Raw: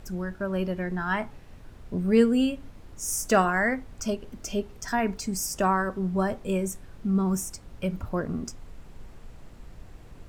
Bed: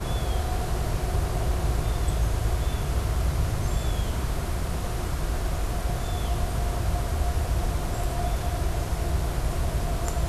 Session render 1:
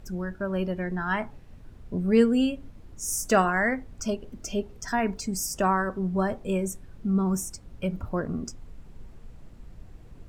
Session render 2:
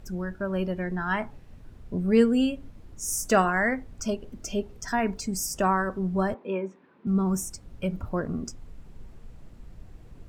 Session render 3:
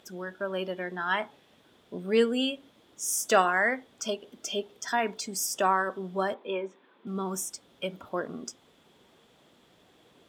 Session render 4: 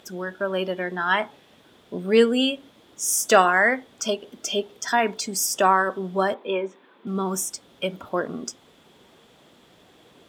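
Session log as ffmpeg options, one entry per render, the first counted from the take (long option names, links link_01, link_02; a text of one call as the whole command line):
ffmpeg -i in.wav -af "afftdn=noise_reduction=6:noise_floor=-48" out.wav
ffmpeg -i in.wav -filter_complex "[0:a]asettb=1/sr,asplit=3[link_01][link_02][link_03];[link_01]atrim=end=6.344[link_04];[link_02]atrim=start=6.34:end=7.07,asetpts=PTS-STARTPTS,afade=type=in:duration=0.004:curve=qsin,afade=type=out:start_time=0.726:duration=0.004:curve=qsin,highpass=frequency=230:width=0.5412,highpass=frequency=230:width=1.3066,equalizer=frequency=680:width_type=q:width=4:gain=-5,equalizer=frequency=980:width_type=q:width=4:gain=7,equalizer=frequency=3100:width_type=q:width=4:gain=-4,lowpass=frequency=3200:width=0.5412,lowpass=frequency=3200:width=1.3066[link_05];[link_03]atrim=start=7.066[link_06];[link_04][link_05]acrossfade=duration=0.004:curve1=hsin:curve2=qsin[link_07];[link_07][link_06]acrossfade=duration=0.004:curve1=qsin:curve2=hsin" out.wav
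ffmpeg -i in.wav -af "highpass=360,equalizer=frequency=3400:width=4.4:gain=13.5" out.wav
ffmpeg -i in.wav -af "volume=6.5dB,alimiter=limit=-3dB:level=0:latency=1" out.wav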